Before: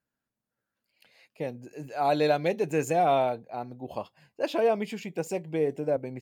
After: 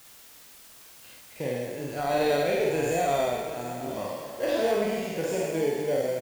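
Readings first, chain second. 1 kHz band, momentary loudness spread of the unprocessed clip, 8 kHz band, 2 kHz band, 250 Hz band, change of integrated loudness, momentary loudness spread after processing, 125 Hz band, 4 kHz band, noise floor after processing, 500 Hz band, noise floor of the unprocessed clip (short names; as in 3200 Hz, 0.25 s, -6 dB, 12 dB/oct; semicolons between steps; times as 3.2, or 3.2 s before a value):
-2.5 dB, 14 LU, +6.0 dB, +3.0 dB, +0.5 dB, +0.5 dB, 23 LU, 0.0 dB, +3.5 dB, -51 dBFS, +1.5 dB, under -85 dBFS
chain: spectral trails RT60 1.60 s; recorder AGC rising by 6.8 dB/s; gate with hold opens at -36 dBFS; bell 810 Hz -9 dB 0.25 oct; harmonic-percussive split percussive -6 dB; low shelf 230 Hz -4.5 dB; in parallel at -11.5 dB: sample-and-hold 34×; on the sum: added noise white -49 dBFS; doubler 49 ms -2.5 dB; on a send: echo 0.734 s -13.5 dB; on the sum: gain -3.5 dB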